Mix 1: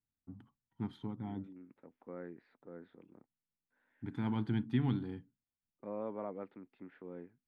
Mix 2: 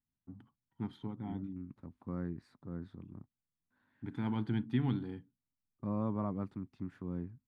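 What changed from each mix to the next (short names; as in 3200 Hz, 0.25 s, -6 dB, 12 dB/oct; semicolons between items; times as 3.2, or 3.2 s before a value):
second voice: remove speaker cabinet 410–3200 Hz, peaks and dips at 480 Hz +7 dB, 1100 Hz -8 dB, 2100 Hz +3 dB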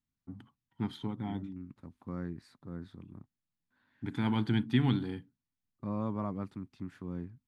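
first voice +4.5 dB; master: add high shelf 2300 Hz +10.5 dB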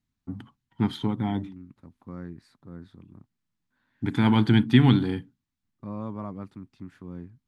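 first voice +10.0 dB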